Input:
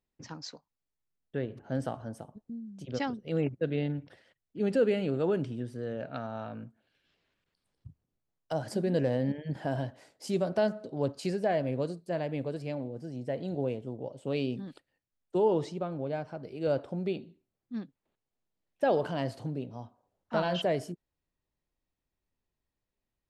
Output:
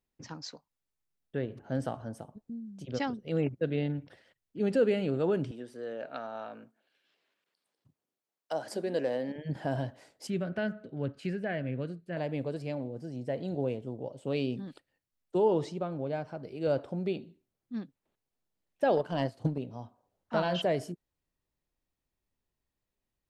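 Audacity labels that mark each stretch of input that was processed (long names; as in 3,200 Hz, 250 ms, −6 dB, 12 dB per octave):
5.510000	9.360000	high-pass filter 350 Hz
10.270000	12.170000	drawn EQ curve 180 Hz 0 dB, 980 Hz −11 dB, 1,500 Hz +3 dB, 2,900 Hz −1 dB, 4,900 Hz −14 dB
18.960000	19.580000	transient designer attack +10 dB, sustain −10 dB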